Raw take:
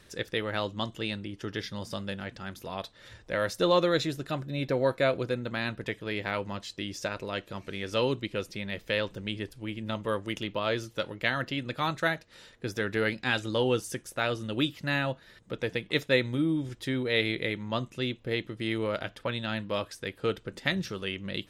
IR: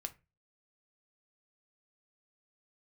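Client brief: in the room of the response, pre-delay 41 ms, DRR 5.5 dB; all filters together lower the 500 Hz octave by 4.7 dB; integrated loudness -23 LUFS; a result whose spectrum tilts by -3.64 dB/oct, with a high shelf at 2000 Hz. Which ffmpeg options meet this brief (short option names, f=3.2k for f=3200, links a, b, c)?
-filter_complex "[0:a]equalizer=f=500:t=o:g=-6,highshelf=f=2k:g=7.5,asplit=2[a][b];[1:a]atrim=start_sample=2205,adelay=41[c];[b][c]afir=irnorm=-1:irlink=0,volume=-3dB[d];[a][d]amix=inputs=2:normalize=0,volume=6dB"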